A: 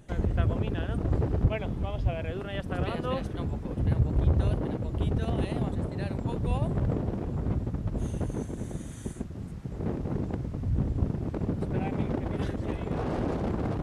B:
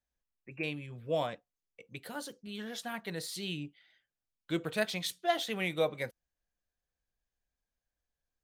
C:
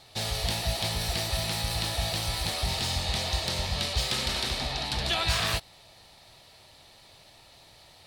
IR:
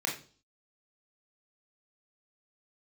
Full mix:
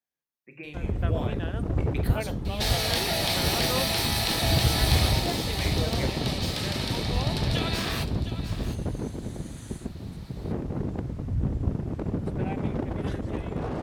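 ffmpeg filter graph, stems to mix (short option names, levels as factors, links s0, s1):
-filter_complex "[0:a]adelay=650,volume=0.355[s0];[1:a]acompressor=threshold=0.00794:ratio=3,volume=0.531,asplit=2[s1][s2];[s2]volume=0.355[s3];[2:a]adelay=2450,volume=0.668,afade=t=out:st=5.03:d=0.24:silence=0.298538,asplit=3[s4][s5][s6];[s5]volume=0.224[s7];[s6]volume=0.251[s8];[s1][s4]amix=inputs=2:normalize=0,highpass=150,acompressor=threshold=0.00794:ratio=2,volume=1[s9];[3:a]atrim=start_sample=2205[s10];[s3][s7]amix=inputs=2:normalize=0[s11];[s11][s10]afir=irnorm=-1:irlink=0[s12];[s8]aecho=0:1:709:1[s13];[s0][s9][s12][s13]amix=inputs=4:normalize=0,equalizer=f=14000:w=3.3:g=8.5,dynaudnorm=f=140:g=11:m=2.99"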